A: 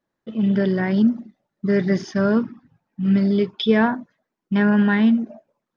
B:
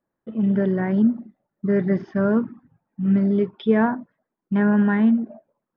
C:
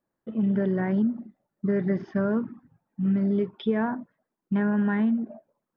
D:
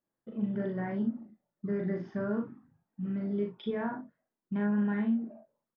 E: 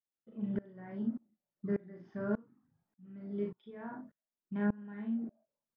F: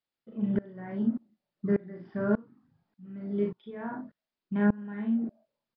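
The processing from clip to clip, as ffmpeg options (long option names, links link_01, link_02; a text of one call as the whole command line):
ffmpeg -i in.wav -af "lowpass=1600,volume=-1dB" out.wav
ffmpeg -i in.wav -af "acompressor=threshold=-19dB:ratio=6,volume=-1.5dB" out.wav
ffmpeg -i in.wav -af "aecho=1:1:39|62:0.631|0.355,volume=-8.5dB" out.wav
ffmpeg -i in.wav -af "aeval=exprs='val(0)*pow(10,-26*if(lt(mod(-1.7*n/s,1),2*abs(-1.7)/1000),1-mod(-1.7*n/s,1)/(2*abs(-1.7)/1000),(mod(-1.7*n/s,1)-2*abs(-1.7)/1000)/(1-2*abs(-1.7)/1000))/20)':channel_layout=same,volume=1dB" out.wav
ffmpeg -i in.wav -af "aresample=11025,aresample=44100,volume=7.5dB" out.wav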